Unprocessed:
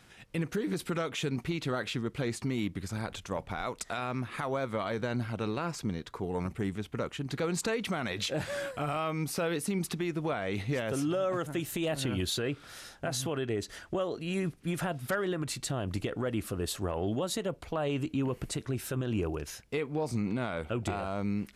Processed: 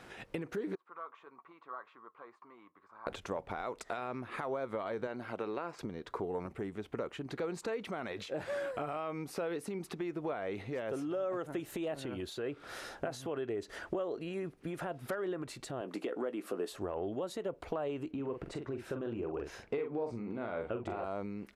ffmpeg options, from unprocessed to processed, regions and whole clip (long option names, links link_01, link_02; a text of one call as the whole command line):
ffmpeg -i in.wav -filter_complex "[0:a]asettb=1/sr,asplit=3[link_01][link_02][link_03];[link_01]atrim=end=0.754[link_04];[link_02]atrim=start=0.75:end=3.07,asetpts=PTS-STARTPTS,afade=type=in:duration=0.004:curve=qsin,afade=type=out:start_time=2.316:duration=0.004:curve=qsin,bandpass=frequency=1100:width_type=q:width=10,flanger=delay=3:depth=1.3:regen=-76:speed=1.8:shape=triangular[link_05];[link_03]atrim=start=3.066[link_06];[link_04][link_05]acrossfade=duration=0.004:curve1=hsin:curve2=qsin[link_07];[link_07][link_06]acrossfade=duration=0.004:curve1=qsin:curve2=hsin,asettb=1/sr,asplit=3[link_08][link_09][link_10];[link_08]atrim=end=5.074[link_11];[link_09]atrim=start=5.07:end=5.79,asetpts=PTS-STARTPTS,afade=type=in:duration=0.004:curve=qsin,afade=type=out:start_time=0.716:duration=0.004:curve=qsin,highpass=frequency=310:poles=1,acrossover=split=3600[link_12][link_13];[link_13]acompressor=threshold=-54dB:ratio=4:attack=1:release=60[link_14];[link_12][link_14]amix=inputs=2:normalize=0[link_15];[link_10]atrim=start=5.786[link_16];[link_11][link_15]acrossfade=duration=0.004:curve1=hsin:curve2=qsin[link_17];[link_17][link_16]acrossfade=duration=0.004:curve1=qsin:curve2=hsin,asettb=1/sr,asplit=3[link_18][link_19][link_20];[link_18]atrim=end=15.814[link_21];[link_19]atrim=start=15.81:end=16.72,asetpts=PTS-STARTPTS,afade=type=in:duration=0.004:curve=qsin,afade=type=out:start_time=0.906:duration=0.004:curve=qsin,highpass=frequency=210:width=0.5412,highpass=frequency=210:width=1.3066,asplit=2[link_22][link_23];[link_23]adelay=16,volume=-12dB[link_24];[link_22][link_24]amix=inputs=2:normalize=0,atrim=end_sample=40131[link_25];[link_20]atrim=start=16.716[link_26];[link_21][link_25]acrossfade=duration=0.004:curve1=hsin:curve2=qsin[link_27];[link_27][link_26]acrossfade=duration=0.004:curve1=qsin:curve2=hsin,asettb=1/sr,asplit=3[link_28][link_29][link_30];[link_28]atrim=end=18.114[link_31];[link_29]atrim=start=18.11:end=21.04,asetpts=PTS-STARTPTS,afade=type=in:duration=0.004:curve=qsin,afade=type=out:start_time=2.926:duration=0.004:curve=qsin,aemphasis=mode=reproduction:type=50fm,asplit=2[link_32][link_33];[link_33]adelay=43,volume=-6.5dB[link_34];[link_32][link_34]amix=inputs=2:normalize=0,atrim=end_sample=129213[link_35];[link_30]atrim=start=21.036[link_36];[link_31][link_35]acrossfade=duration=0.004:curve1=hsin:curve2=qsin[link_37];[link_37][link_36]acrossfade=duration=0.004:curve1=qsin:curve2=hsin,equalizer=frequency=3400:width=0.91:gain=4,acompressor=threshold=-42dB:ratio=10,firequalizer=gain_entry='entry(130,0);entry(380,11);entry(3200,-3)':delay=0.05:min_phase=1" out.wav